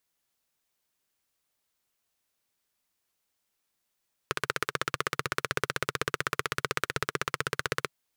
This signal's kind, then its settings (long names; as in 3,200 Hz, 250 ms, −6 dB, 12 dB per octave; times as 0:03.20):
pulse-train model of a single-cylinder engine, steady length 3.58 s, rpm 1,900, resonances 140/430/1,300 Hz